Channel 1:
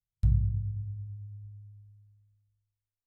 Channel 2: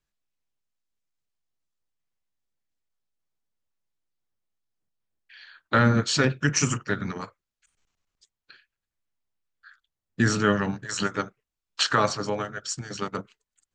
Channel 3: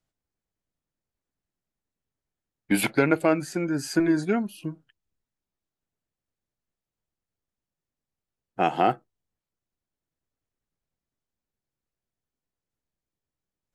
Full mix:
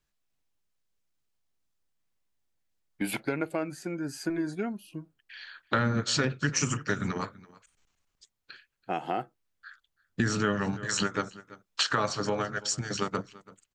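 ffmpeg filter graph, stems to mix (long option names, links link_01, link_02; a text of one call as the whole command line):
ffmpeg -i stem1.wav -i stem2.wav -i stem3.wav -filter_complex "[1:a]volume=3dB,asplit=2[link_01][link_02];[link_02]volume=-23.5dB[link_03];[2:a]adelay=300,volume=-7dB[link_04];[link_03]aecho=0:1:333:1[link_05];[link_01][link_04][link_05]amix=inputs=3:normalize=0,acompressor=threshold=-26dB:ratio=3" out.wav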